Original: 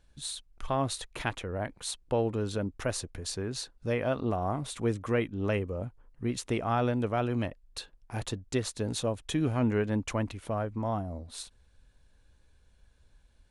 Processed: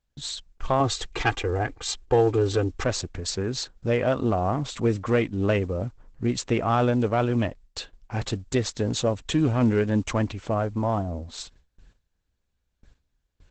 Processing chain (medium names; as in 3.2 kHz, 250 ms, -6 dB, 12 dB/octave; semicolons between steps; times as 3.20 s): gate with hold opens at -50 dBFS; 0.80–2.84 s: comb 2.5 ms, depth 91%; modulation noise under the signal 32 dB; saturation -17.5 dBFS, distortion -23 dB; trim +7.5 dB; Opus 12 kbps 48 kHz